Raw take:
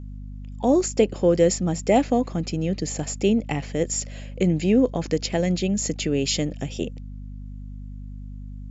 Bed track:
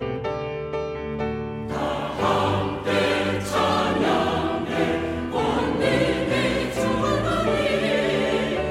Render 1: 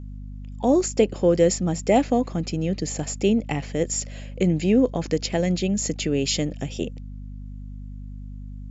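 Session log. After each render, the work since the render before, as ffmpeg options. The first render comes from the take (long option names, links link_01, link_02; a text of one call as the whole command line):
ffmpeg -i in.wav -af anull out.wav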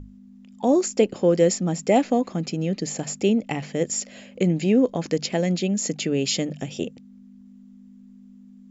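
ffmpeg -i in.wav -af "bandreject=frequency=50:width_type=h:width=6,bandreject=frequency=100:width_type=h:width=6,bandreject=frequency=150:width_type=h:width=6" out.wav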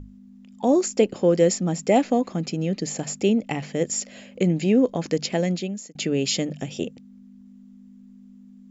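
ffmpeg -i in.wav -filter_complex "[0:a]asplit=2[link_01][link_02];[link_01]atrim=end=5.95,asetpts=PTS-STARTPTS,afade=type=out:start_time=5.43:duration=0.52[link_03];[link_02]atrim=start=5.95,asetpts=PTS-STARTPTS,afade=type=in:duration=0.004:curve=hsin[link_04];[link_03][link_04]concat=n=2:v=0:a=1" out.wav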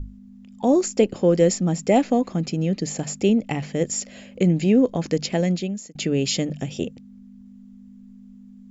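ffmpeg -i in.wav -af "lowshelf=frequency=100:gain=12" out.wav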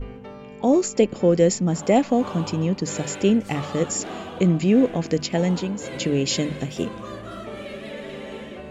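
ffmpeg -i in.wav -i bed.wav -filter_complex "[1:a]volume=-13.5dB[link_01];[0:a][link_01]amix=inputs=2:normalize=0" out.wav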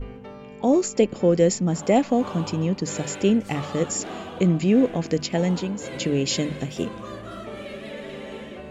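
ffmpeg -i in.wav -af "volume=-1dB" out.wav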